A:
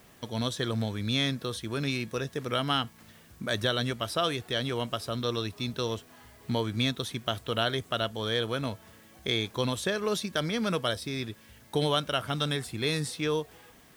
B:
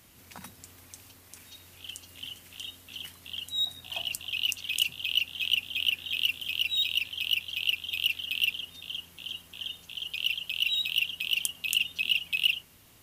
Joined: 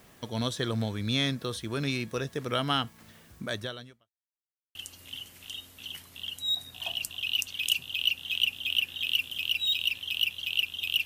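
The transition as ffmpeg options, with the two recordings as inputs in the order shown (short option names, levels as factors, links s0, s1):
-filter_complex "[0:a]apad=whole_dur=11.05,atrim=end=11.05,asplit=2[s0][s1];[s0]atrim=end=4.11,asetpts=PTS-STARTPTS,afade=t=out:st=3.38:d=0.73:c=qua[s2];[s1]atrim=start=4.11:end=4.75,asetpts=PTS-STARTPTS,volume=0[s3];[1:a]atrim=start=1.85:end=8.15,asetpts=PTS-STARTPTS,afade=t=in:d=0.004:c=hsin[s4];[s2][s3][s4]concat=n=3:v=0:a=1"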